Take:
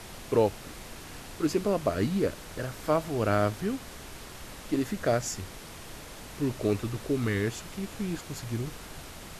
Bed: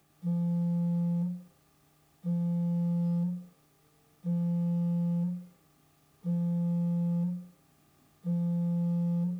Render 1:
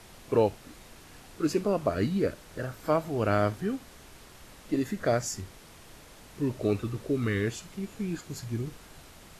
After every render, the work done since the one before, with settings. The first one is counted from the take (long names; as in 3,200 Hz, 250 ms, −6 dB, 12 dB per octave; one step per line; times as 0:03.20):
noise reduction from a noise print 7 dB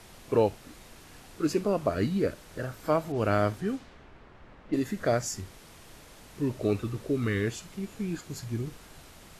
0:03.12–0:04.85: low-pass that shuts in the quiet parts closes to 1,600 Hz, open at −24.5 dBFS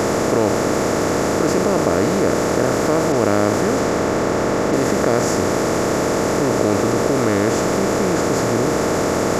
compressor on every frequency bin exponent 0.2
envelope flattener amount 50%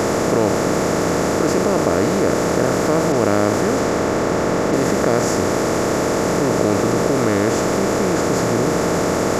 mix in bed −2.5 dB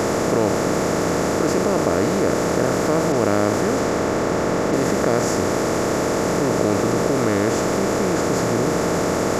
level −2 dB